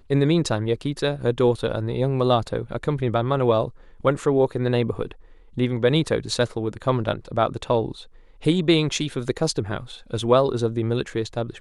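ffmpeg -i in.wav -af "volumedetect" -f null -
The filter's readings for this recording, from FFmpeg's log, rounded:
mean_volume: -22.8 dB
max_volume: -5.2 dB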